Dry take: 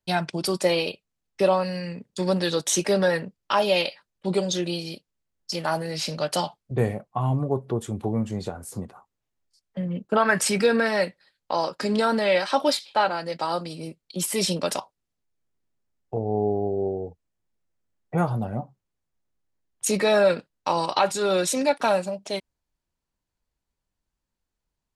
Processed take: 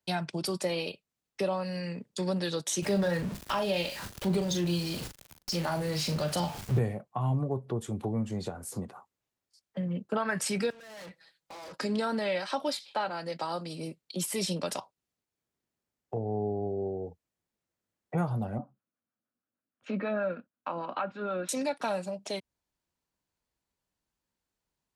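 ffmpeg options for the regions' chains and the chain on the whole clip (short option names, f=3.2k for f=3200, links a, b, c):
-filter_complex "[0:a]asettb=1/sr,asplit=3[a][b][c];[a]atrim=end=2.824[d];[b]atrim=start=2.82:end=6.79,asetpts=PTS-STARTPTS,afade=t=in:d=0.004:c=qsin,afade=t=out:st=3.966:d=0.004:c=qsin,aeval=exprs='val(0)+0.5*0.0299*sgn(val(0))':c=same,lowshelf=f=130:g=11.5,asplit=2[e][f];[f]adelay=40,volume=-9dB[g];[e][g]amix=inputs=2:normalize=0,atrim=end_sample=175077[h];[c]atrim=start=6.786[i];[d][h]acrossfade=d=0.004:c1=hsin:c2=qsin[j];[j][i]acrossfade=d=0.004:c1=qsin:c2=hsin,asettb=1/sr,asplit=3[k][l][m];[k]atrim=end=10.704[n];[l]atrim=start=10.7:end=11.77,asetpts=PTS-STARTPTS,afade=t=in:d=0.004:c=qsin,afade=t=out:st=1.066:d=0.004:c=qsin,aecho=1:1:6.1:0.91,atrim=end_sample=47187,acompressor=threshold=-24dB:ratio=16:attack=3.2:release=140:knee=1:detection=peak,aeval=exprs='(tanh(141*val(0)+0.4)-tanh(0.4))/141':c=same[o];[m]atrim=start=11.766[p];[n][o]acrossfade=d=0.004:c1=hsin:c2=qsin[q];[q][p]acrossfade=d=0.004:c1=qsin:c2=hsin,asettb=1/sr,asplit=3[r][s][t];[r]atrim=end=18.584[u];[s]atrim=start=18.58:end=21.49,asetpts=PTS-STARTPTS,afade=t=in:d=0.004:c=qsin,afade=t=out:st=2.906:d=0.004:c=qsin,acrossover=split=600[v][w];[v]aeval=exprs='val(0)*(1-0.5/2+0.5/2*cos(2*PI*6.4*n/s))':c=same[x];[w]aeval=exprs='val(0)*(1-0.5/2-0.5/2*cos(2*PI*6.4*n/s))':c=same[y];[x][y]amix=inputs=2:normalize=0,highpass=120,equalizer=f=150:t=q:w=4:g=-8,equalizer=f=240:t=q:w=4:g=8,equalizer=f=400:t=q:w=4:g=-7,equalizer=f=880:t=q:w=4:g=-7,equalizer=f=1.4k:t=q:w=4:g=5,equalizer=f=2k:t=q:w=4:g=-8,lowpass=f=2.4k:w=0.5412,lowpass=f=2.4k:w=1.3066[z];[t]atrim=start=21.486[aa];[u][z]acrossfade=d=0.004:c1=hsin:c2=qsin[ab];[ab][aa]acrossfade=d=0.004:c1=qsin:c2=hsin,acrossover=split=170[ac][ad];[ad]acompressor=threshold=-36dB:ratio=2[ae];[ac][ae]amix=inputs=2:normalize=0,highpass=f=130:p=1"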